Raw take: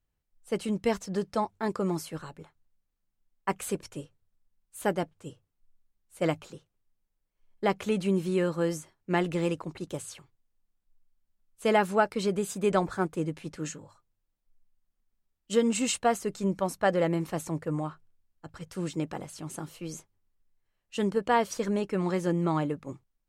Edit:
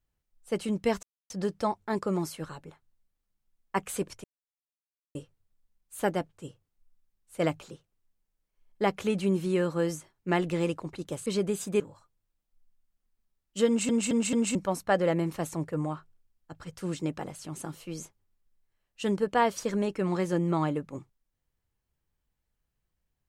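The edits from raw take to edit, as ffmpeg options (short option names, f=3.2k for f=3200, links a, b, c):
-filter_complex "[0:a]asplit=9[a][b][c][d][e][f][g][h][i];[a]atrim=end=1.03,asetpts=PTS-STARTPTS,afade=t=out:st=1.026:d=0.004:c=hsin,apad=pad_dur=0.27[j];[b]atrim=start=1.03:end=3.97,asetpts=PTS-STARTPTS,afade=t=in:d=0.004:c=hsin,afade=t=out:st=2.936:d=0.004:c=hsin,apad=pad_dur=0.91[k];[c]atrim=start=3.97:end=10.082,asetpts=PTS-STARTPTS,afade=t=in:d=0.004:c=hsin[l];[d]atrim=start=12.148:end=12.692[m];[e]atrim=start=13.738:end=15.832[n];[f]atrim=start=15.608:end=15.832[o];[g]atrim=start=15.608:end=15.832[p];[h]atrim=start=15.608:end=15.832[q];[i]atrim=start=16.488[r];[j][k][l]concat=n=3:v=0:a=1[s];[s][m]acrossfade=d=0.004:c1=hsin:c2=hsin[t];[t][n]acrossfade=d=0.004:c1=hsin:c2=hsin[u];[u][o]acrossfade=d=0.004:c1=hsin:c2=hsin[v];[v][p]acrossfade=d=0.004:c1=hsin:c2=hsin[w];[w][q]acrossfade=d=0.004:c1=hsin:c2=hsin[x];[x][r]acrossfade=d=0.004:c1=hsin:c2=hsin"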